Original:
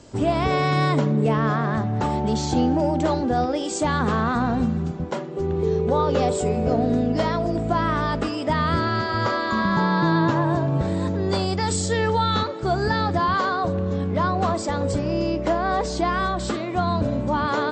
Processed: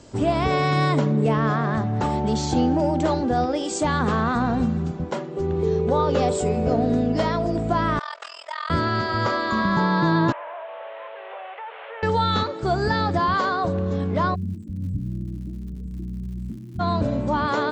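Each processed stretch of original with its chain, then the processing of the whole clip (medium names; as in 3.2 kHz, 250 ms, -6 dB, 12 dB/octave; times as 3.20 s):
7.99–8.70 s: Bessel high-pass 1.1 kHz, order 6 + AM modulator 42 Hz, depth 90%
10.32–12.03 s: one-bit delta coder 16 kbps, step -35 dBFS + steep high-pass 530 Hz 48 dB/octave + compression 2.5:1, threshold -34 dBFS
14.34–16.79 s: inverse Chebyshev band-stop 810–4900 Hz, stop band 70 dB + crackle 160 per s -43 dBFS
whole clip: none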